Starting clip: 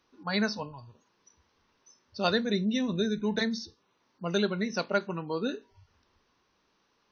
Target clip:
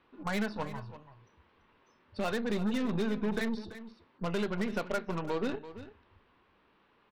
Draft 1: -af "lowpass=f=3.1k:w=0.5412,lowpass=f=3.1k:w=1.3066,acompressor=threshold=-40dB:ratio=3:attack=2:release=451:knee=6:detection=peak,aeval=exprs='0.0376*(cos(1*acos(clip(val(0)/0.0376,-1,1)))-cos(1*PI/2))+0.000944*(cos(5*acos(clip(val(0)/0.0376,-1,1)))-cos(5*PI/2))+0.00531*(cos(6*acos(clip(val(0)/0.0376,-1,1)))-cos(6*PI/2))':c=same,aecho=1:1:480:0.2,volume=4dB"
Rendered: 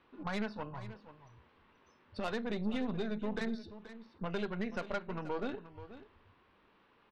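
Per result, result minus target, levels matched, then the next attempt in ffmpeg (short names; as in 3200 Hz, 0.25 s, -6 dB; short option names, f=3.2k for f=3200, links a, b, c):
echo 0.143 s late; compressor: peak gain reduction +5 dB
-af "lowpass=f=3.1k:w=0.5412,lowpass=f=3.1k:w=1.3066,acompressor=threshold=-40dB:ratio=3:attack=2:release=451:knee=6:detection=peak,aeval=exprs='0.0376*(cos(1*acos(clip(val(0)/0.0376,-1,1)))-cos(1*PI/2))+0.000944*(cos(5*acos(clip(val(0)/0.0376,-1,1)))-cos(5*PI/2))+0.00531*(cos(6*acos(clip(val(0)/0.0376,-1,1)))-cos(6*PI/2))':c=same,aecho=1:1:337:0.2,volume=4dB"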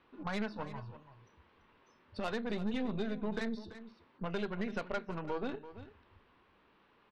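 compressor: peak gain reduction +5 dB
-af "lowpass=f=3.1k:w=0.5412,lowpass=f=3.1k:w=1.3066,acompressor=threshold=-32.5dB:ratio=3:attack=2:release=451:knee=6:detection=peak,aeval=exprs='0.0376*(cos(1*acos(clip(val(0)/0.0376,-1,1)))-cos(1*PI/2))+0.000944*(cos(5*acos(clip(val(0)/0.0376,-1,1)))-cos(5*PI/2))+0.00531*(cos(6*acos(clip(val(0)/0.0376,-1,1)))-cos(6*PI/2))':c=same,aecho=1:1:337:0.2,volume=4dB"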